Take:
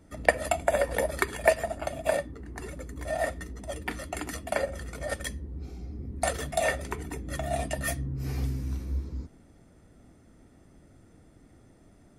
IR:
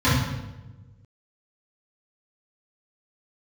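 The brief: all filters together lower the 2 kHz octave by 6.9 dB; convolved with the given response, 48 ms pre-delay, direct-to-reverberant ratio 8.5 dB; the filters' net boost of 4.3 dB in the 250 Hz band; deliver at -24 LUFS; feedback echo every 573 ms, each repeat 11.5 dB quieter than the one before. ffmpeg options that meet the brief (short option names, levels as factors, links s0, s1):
-filter_complex "[0:a]equalizer=f=250:t=o:g=5.5,equalizer=f=2000:t=o:g=-8,aecho=1:1:573|1146|1719:0.266|0.0718|0.0194,asplit=2[s0][s1];[1:a]atrim=start_sample=2205,adelay=48[s2];[s1][s2]afir=irnorm=-1:irlink=0,volume=0.0398[s3];[s0][s3]amix=inputs=2:normalize=0,volume=1.58"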